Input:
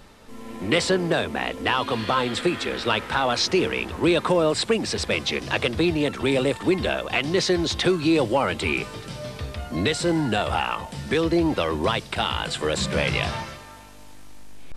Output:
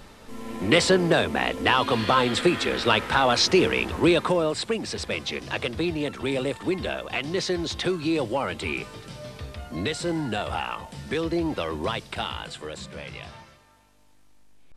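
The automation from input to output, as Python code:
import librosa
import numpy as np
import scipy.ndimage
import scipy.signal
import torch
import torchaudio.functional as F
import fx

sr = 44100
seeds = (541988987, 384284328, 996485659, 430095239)

y = fx.gain(x, sr, db=fx.line((3.97, 2.0), (4.55, -5.0), (12.19, -5.0), (12.95, -15.0)))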